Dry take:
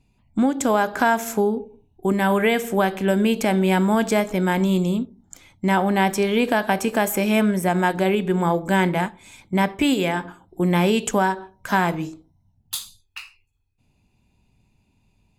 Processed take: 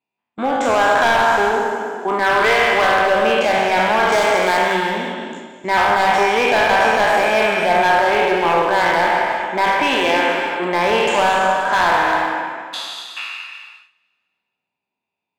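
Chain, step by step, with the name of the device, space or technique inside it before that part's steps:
peak hold with a decay on every bin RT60 1.98 s
walkie-talkie (band-pass filter 560–2,800 Hz; hard clipping −17.5 dBFS, distortion −11 dB; noise gate −40 dBFS, range −18 dB)
0:04.12–0:04.75: high-shelf EQ 4,200 Hz +8.5 dB
reverb whose tail is shaped and stops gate 400 ms flat, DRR 4.5 dB
level +6 dB

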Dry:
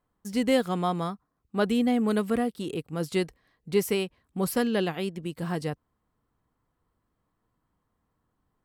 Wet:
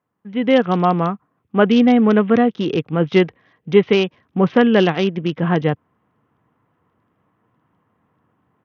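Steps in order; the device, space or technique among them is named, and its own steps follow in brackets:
Bluetooth headset (high-pass filter 100 Hz 24 dB per octave; automatic gain control gain up to 12 dB; downsampling to 8,000 Hz; level +1.5 dB; SBC 64 kbit/s 48,000 Hz)

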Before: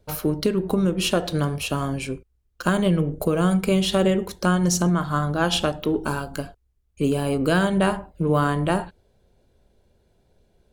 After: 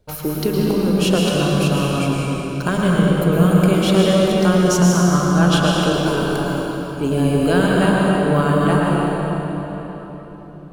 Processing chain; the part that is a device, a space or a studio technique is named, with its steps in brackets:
cathedral (convolution reverb RT60 4.3 s, pre-delay 104 ms, DRR −4 dB)

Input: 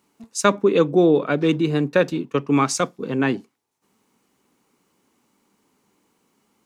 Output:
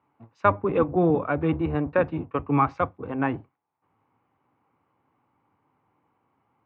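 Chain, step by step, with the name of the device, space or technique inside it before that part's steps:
sub-octave bass pedal (sub-octave generator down 1 octave, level −1 dB; loudspeaker in its box 89–2,200 Hz, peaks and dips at 130 Hz −4 dB, 210 Hz −9 dB, 400 Hz −6 dB, 800 Hz +6 dB, 1,100 Hz +4 dB, 1,800 Hz −3 dB)
level −3.5 dB

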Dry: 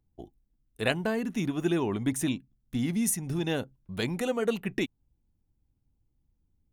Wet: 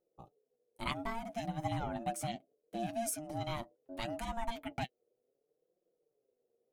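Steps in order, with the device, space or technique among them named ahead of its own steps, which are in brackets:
alien voice (ring modulation 460 Hz; flanger 0.69 Hz, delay 5.5 ms, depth 3.1 ms, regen +34%)
level −2.5 dB

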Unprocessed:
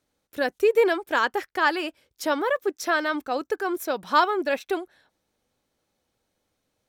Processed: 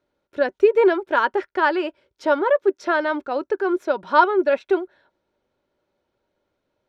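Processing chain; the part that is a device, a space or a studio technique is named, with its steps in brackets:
inside a cardboard box (low-pass filter 3,700 Hz 12 dB per octave; hollow resonant body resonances 380/580/940/1,400 Hz, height 10 dB, ringing for 40 ms)
level −1 dB

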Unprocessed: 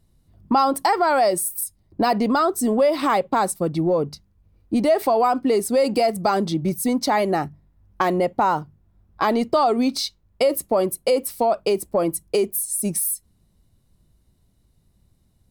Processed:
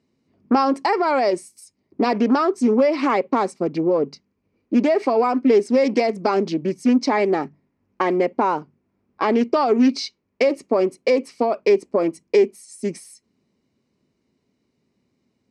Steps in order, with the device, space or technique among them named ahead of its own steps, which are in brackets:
full-range speaker at full volume (highs frequency-modulated by the lows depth 0.35 ms; loudspeaker in its box 240–6,100 Hz, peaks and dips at 250 Hz +8 dB, 410 Hz +6 dB, 720 Hz −4 dB, 1,500 Hz −3 dB, 2,300 Hz +7 dB, 3,600 Hz −8 dB)

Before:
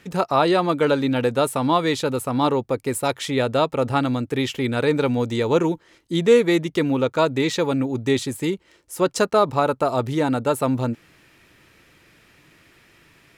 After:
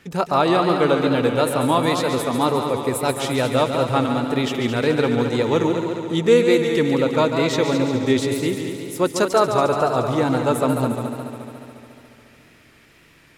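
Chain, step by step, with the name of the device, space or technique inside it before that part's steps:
multi-head tape echo (echo machine with several playback heads 71 ms, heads second and third, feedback 65%, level −8 dB; tape wow and flutter)

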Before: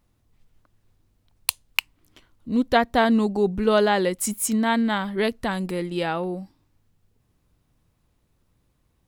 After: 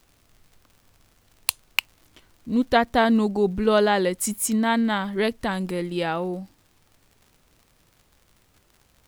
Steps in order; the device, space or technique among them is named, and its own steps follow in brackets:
vinyl LP (surface crackle 82 per second −43 dBFS; pink noise bed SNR 38 dB)

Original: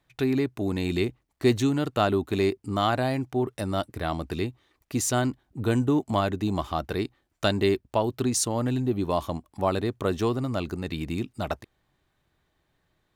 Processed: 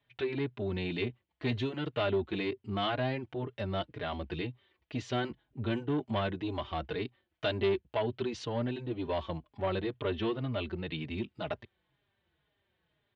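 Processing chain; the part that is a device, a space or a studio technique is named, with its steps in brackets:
barber-pole flanger into a guitar amplifier (barber-pole flanger 4.4 ms −2 Hz; soft clipping −21.5 dBFS, distortion −15 dB; loudspeaker in its box 76–3,700 Hz, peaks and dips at 110 Hz −3 dB, 180 Hz −4 dB, 280 Hz −6 dB, 760 Hz −4 dB, 1,200 Hz −5 dB, 3,100 Hz +5 dB)
0:09.91–0:10.98: high shelf with overshoot 4,800 Hz −6.5 dB, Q 1.5

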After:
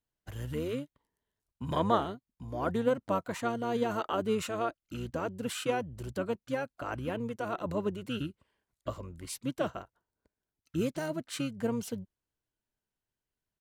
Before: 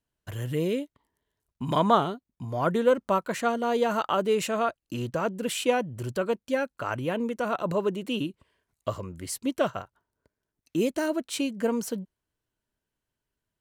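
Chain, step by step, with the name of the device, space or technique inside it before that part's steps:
octave pedal (pitch-shifted copies added −12 semitones −7 dB)
level −7 dB

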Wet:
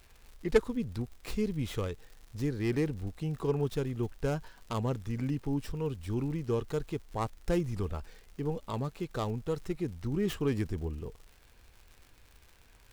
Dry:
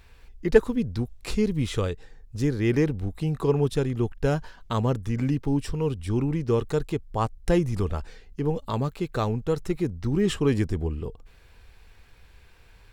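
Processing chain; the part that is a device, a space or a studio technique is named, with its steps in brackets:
record under a worn stylus (stylus tracing distortion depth 0.26 ms; surface crackle 120 per second −37 dBFS; pink noise bed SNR 35 dB)
level −7.5 dB

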